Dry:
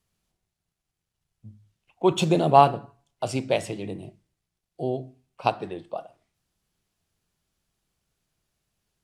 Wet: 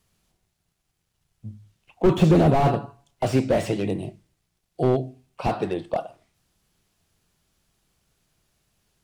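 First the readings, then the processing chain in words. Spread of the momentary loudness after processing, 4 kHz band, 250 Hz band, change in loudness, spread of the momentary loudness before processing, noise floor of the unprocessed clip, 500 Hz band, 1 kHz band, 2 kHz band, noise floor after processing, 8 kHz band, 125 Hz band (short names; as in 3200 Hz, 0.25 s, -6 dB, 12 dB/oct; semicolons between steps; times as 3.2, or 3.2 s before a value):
15 LU, -3.5 dB, +6.0 dB, +1.5 dB, 19 LU, -84 dBFS, +2.0 dB, -4.5 dB, +1.0 dB, -76 dBFS, -2.5 dB, +7.5 dB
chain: slew limiter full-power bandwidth 33 Hz; gain +8 dB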